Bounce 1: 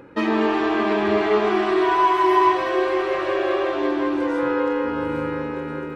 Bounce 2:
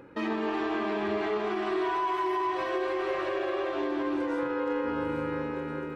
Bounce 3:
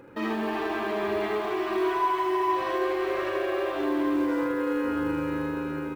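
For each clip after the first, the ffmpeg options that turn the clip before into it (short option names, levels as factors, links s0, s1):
-af "alimiter=limit=0.158:level=0:latency=1:release=91,volume=0.531"
-af "acrusher=bits=8:mode=log:mix=0:aa=0.000001,aecho=1:1:41|78:0.422|0.668"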